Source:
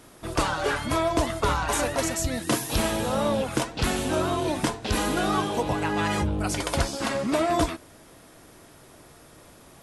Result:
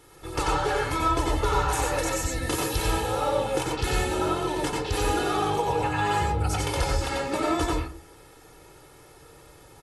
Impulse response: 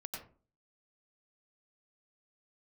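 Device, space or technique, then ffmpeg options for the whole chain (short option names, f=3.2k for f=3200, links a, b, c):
microphone above a desk: -filter_complex "[0:a]aecho=1:1:2.3:0.78[a];[1:a]atrim=start_sample=2205[b];[a][b]afir=irnorm=-1:irlink=0"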